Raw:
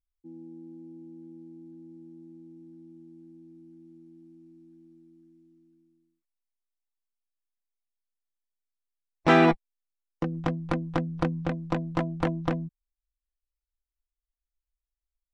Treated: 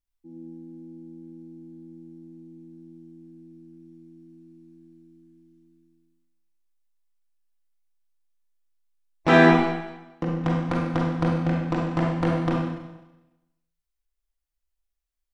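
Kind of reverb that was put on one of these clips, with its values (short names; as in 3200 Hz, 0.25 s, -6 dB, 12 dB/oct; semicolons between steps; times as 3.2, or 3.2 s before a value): Schroeder reverb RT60 1 s, combs from 32 ms, DRR -2 dB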